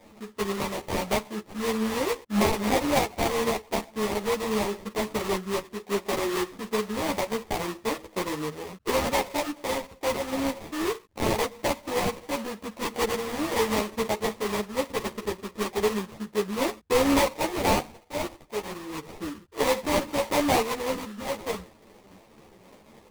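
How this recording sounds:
tremolo triangle 3.8 Hz, depth 35%
aliases and images of a low sample rate 1,500 Hz, jitter 20%
a shimmering, thickened sound

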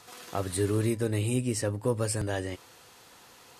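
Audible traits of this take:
background noise floor −55 dBFS
spectral slope −5.5 dB per octave

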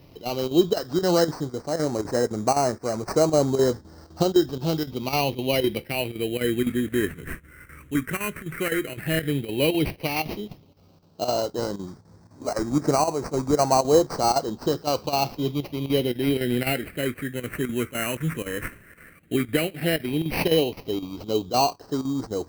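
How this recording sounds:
aliases and images of a low sample rate 3,500 Hz, jitter 0%
phaser sweep stages 4, 0.096 Hz, lowest notch 780–2,900 Hz
chopped level 3.9 Hz, depth 65%, duty 85%

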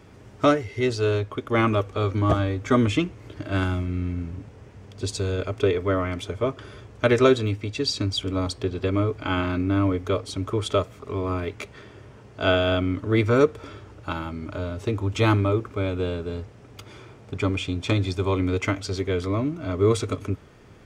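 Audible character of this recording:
background noise floor −48 dBFS
spectral slope −5.5 dB per octave

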